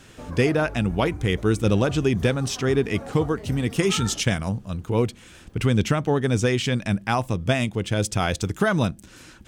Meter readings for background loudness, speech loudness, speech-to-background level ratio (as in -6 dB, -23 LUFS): -38.0 LUFS, -23.5 LUFS, 14.5 dB